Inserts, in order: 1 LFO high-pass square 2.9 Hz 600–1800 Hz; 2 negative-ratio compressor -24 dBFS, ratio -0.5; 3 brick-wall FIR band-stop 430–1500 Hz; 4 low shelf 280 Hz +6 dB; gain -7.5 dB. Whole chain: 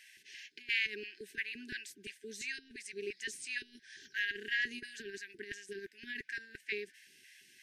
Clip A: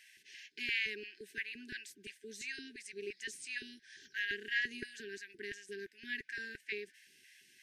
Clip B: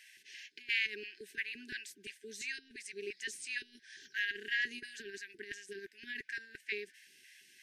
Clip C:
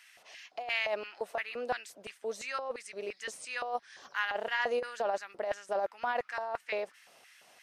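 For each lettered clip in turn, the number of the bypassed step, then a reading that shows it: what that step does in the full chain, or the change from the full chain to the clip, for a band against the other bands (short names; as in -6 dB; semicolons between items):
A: 2, loudness change -1.5 LU; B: 4, 250 Hz band -3.0 dB; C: 3, 500 Hz band +12.5 dB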